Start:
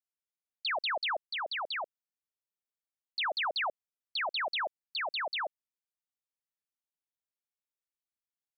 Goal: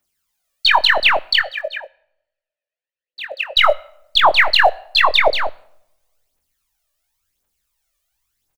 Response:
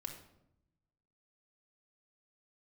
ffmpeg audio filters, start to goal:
-filter_complex "[0:a]asettb=1/sr,asplit=3[a][b][c];[a]atrim=end=4.624[d];[b]atrim=start=4.62:end=5.35,asetpts=PTS-STARTPTS,afade=t=in:d=0.004:c=qsin,afade=t=out:st=0.726:d=0.004:c=qsin,equalizer=f=470:t=o:w=0.8:g=11.5[e];[c]atrim=start=5.346[f];[d][e]acrossfade=d=0.004:c1=hsin:c2=qsin[g];[g][f]acrossfade=d=0.004:c1=qsin:c2=hsin,aeval=exprs='0.0841*(cos(1*acos(clip(val(0)/0.0841,-1,1)))-cos(1*PI/2))+0.000596*(cos(6*acos(clip(val(0)/0.0841,-1,1)))-cos(6*PI/2))':c=same,asubboost=boost=3.5:cutoff=80,asettb=1/sr,asplit=3[h][i][j];[h]atrim=end=1.414[k];[i]atrim=start=1.41:end=3.57,asetpts=PTS-STARTPTS,afade=t=in:d=0.004:c=qsin,afade=t=out:st=2.156:d=0.004:c=qsin,asplit=3[l][m][n];[l]bandpass=f=530:t=q:w=8,volume=0dB[o];[m]bandpass=f=1.84k:t=q:w=8,volume=-6dB[p];[n]bandpass=f=2.48k:t=q:w=8,volume=-9dB[q];[o][p][q]amix=inputs=3:normalize=0[r];[j]atrim=start=3.566[s];[k][r]acrossfade=d=0.004:c1=hsin:c2=qsin[t];[t][s]acrossfade=d=0.004:c1=qsin:c2=hsin,aphaser=in_gain=1:out_gain=1:delay=1.8:decay=0.73:speed=0.94:type=triangular,asplit=2[u][v];[v]adelay=22,volume=-5.5dB[w];[u][w]amix=inputs=2:normalize=0,asplit=2[x][y];[1:a]atrim=start_sample=2205,highshelf=f=3.6k:g=10[z];[y][z]afir=irnorm=-1:irlink=0,volume=-14.5dB[aa];[x][aa]amix=inputs=2:normalize=0,alimiter=level_in=16.5dB:limit=-1dB:release=50:level=0:latency=1,volume=-1dB"

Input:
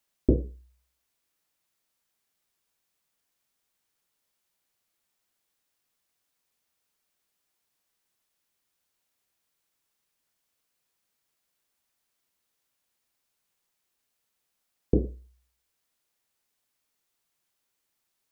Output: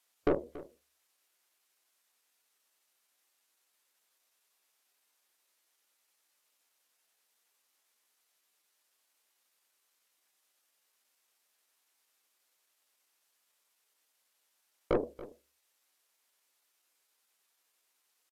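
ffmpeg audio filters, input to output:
-filter_complex "[0:a]highpass=270,lowshelf=f=400:g=-5.5,asetrate=50951,aresample=44100,atempo=0.865537,aeval=exprs='(tanh(28.2*val(0)+0.5)-tanh(0.5))/28.2':c=same,asplit=2[a][b];[b]aecho=0:1:282:0.133[c];[a][c]amix=inputs=2:normalize=0,volume=7.5dB" -ar 32000 -c:a aac -b:a 96k

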